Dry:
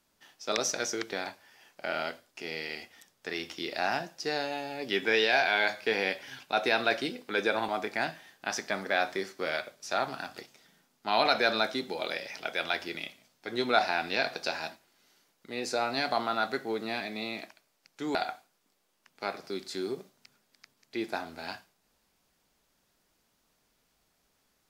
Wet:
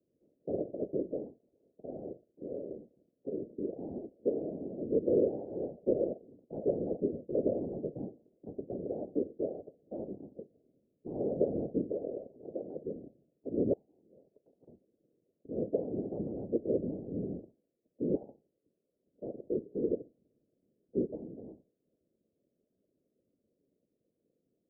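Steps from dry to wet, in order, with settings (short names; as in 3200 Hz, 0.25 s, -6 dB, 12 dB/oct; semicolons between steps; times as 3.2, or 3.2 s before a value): Chebyshev band-pass 210–520 Hz, order 4; 13.73–14.68 flipped gate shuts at -41 dBFS, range -26 dB; whisperiser; gain +3 dB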